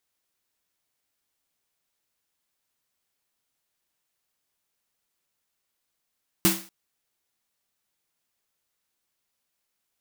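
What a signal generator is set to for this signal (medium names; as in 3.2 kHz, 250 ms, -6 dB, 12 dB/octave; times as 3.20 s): snare drum length 0.24 s, tones 190 Hz, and 330 Hz, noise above 550 Hz, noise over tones 1 dB, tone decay 0.32 s, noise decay 0.39 s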